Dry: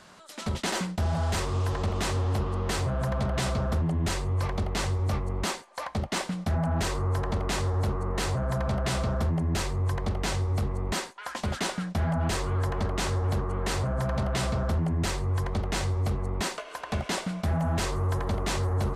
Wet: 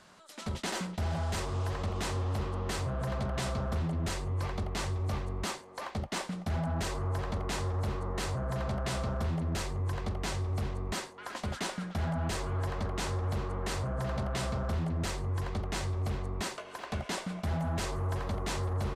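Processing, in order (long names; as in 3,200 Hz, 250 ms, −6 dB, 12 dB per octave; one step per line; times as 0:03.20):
far-end echo of a speakerphone 380 ms, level −8 dB
level −5.5 dB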